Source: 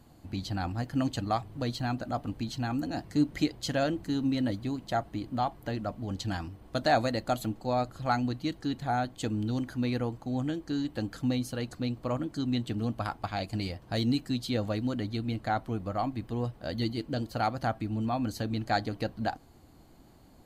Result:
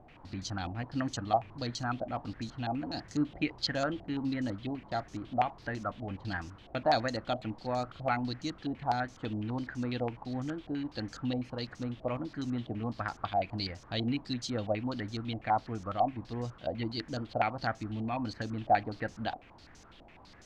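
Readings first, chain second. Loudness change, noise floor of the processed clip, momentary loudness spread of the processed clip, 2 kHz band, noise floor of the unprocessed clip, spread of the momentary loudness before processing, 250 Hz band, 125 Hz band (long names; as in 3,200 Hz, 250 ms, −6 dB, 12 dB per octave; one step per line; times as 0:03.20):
−3.0 dB, −55 dBFS, 7 LU, −0.5 dB, −56 dBFS, 6 LU, −4.5 dB, −5.0 dB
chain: background noise pink −54 dBFS
low-pass on a step sequencer 12 Hz 710–6,200 Hz
level −5 dB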